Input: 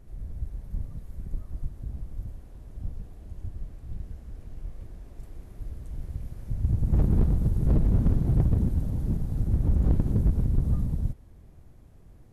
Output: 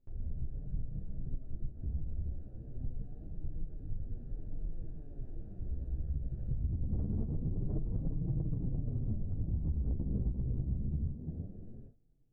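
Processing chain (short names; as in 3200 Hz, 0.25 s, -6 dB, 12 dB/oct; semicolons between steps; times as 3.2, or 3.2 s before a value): Wiener smoothing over 41 samples; treble ducked by the level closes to 700 Hz, closed at -22.5 dBFS; narrowing echo 0.345 s, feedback 51%, band-pass 400 Hz, level -6 dB; flange 0.5 Hz, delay 3.8 ms, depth 4.9 ms, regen -81%; gate with hold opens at -46 dBFS; chorus voices 2, 0.24 Hz, delay 11 ms, depth 4.8 ms; compressor 10:1, threshold -38 dBFS, peak gain reduction 16.5 dB; gain +8 dB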